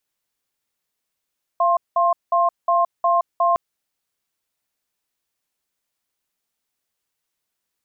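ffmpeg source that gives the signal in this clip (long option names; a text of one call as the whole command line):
ffmpeg -f lavfi -i "aevalsrc='0.141*(sin(2*PI*687*t)+sin(2*PI*1060*t))*clip(min(mod(t,0.36),0.17-mod(t,0.36))/0.005,0,1)':duration=1.96:sample_rate=44100" out.wav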